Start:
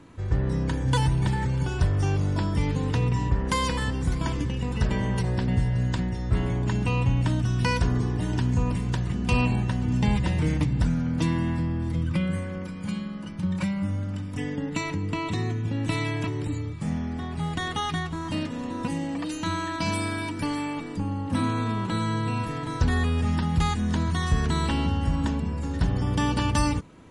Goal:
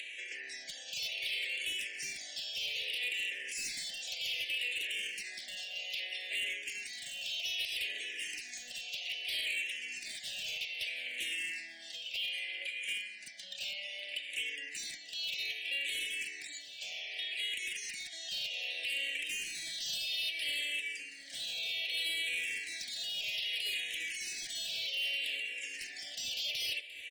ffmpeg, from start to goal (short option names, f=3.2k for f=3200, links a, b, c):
-filter_complex "[0:a]highpass=f=720:w=0.5412,highpass=f=720:w=1.3066,aemphasis=mode=reproduction:type=50kf,afftfilt=real='re*lt(hypot(re,im),0.0355)':imag='im*lt(hypot(re,im),0.0355)':win_size=1024:overlap=0.75,highshelf=f=1.8k:t=q:w=3:g=13,acompressor=mode=upward:threshold=-33dB:ratio=2.5,alimiter=limit=-21dB:level=0:latency=1:release=82,aeval=exprs='0.0473*(abs(mod(val(0)/0.0473+3,4)-2)-1)':c=same,asuperstop=centerf=1100:order=8:qfactor=1.1,aecho=1:1:723|1446|2169|2892:0.15|0.0643|0.0277|0.0119,asplit=2[a][b];[b]afreqshift=-0.63[c];[a][c]amix=inputs=2:normalize=1,volume=-2dB"